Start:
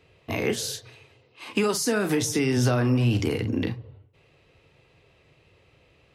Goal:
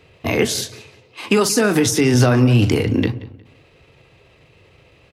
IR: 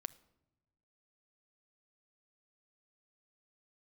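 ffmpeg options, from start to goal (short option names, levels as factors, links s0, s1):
-filter_complex "[0:a]atempo=1.2,asplit=2[s0][s1];[s1]adelay=180,lowpass=f=4800:p=1,volume=0.119,asplit=2[s2][s3];[s3]adelay=180,lowpass=f=4800:p=1,volume=0.3,asplit=2[s4][s5];[s5]adelay=180,lowpass=f=4800:p=1,volume=0.3[s6];[s0][s2][s4][s6]amix=inputs=4:normalize=0,volume=2.66"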